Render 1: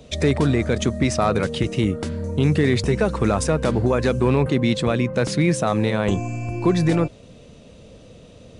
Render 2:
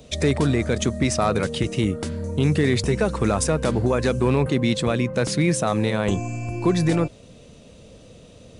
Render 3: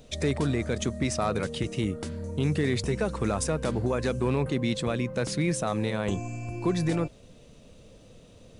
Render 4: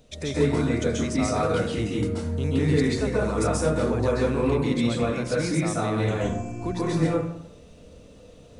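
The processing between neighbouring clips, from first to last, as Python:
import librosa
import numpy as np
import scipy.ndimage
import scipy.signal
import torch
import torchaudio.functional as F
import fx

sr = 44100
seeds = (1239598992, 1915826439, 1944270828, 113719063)

y1 = fx.high_shelf(x, sr, hz=6900.0, db=8.0)
y1 = y1 * librosa.db_to_amplitude(-1.5)
y2 = fx.dmg_noise_colour(y1, sr, seeds[0], colour='brown', level_db=-50.0)
y2 = y2 * librosa.db_to_amplitude(-6.5)
y3 = fx.rev_plate(y2, sr, seeds[1], rt60_s=0.71, hf_ratio=0.5, predelay_ms=120, drr_db=-7.0)
y3 = y3 * librosa.db_to_amplitude(-4.5)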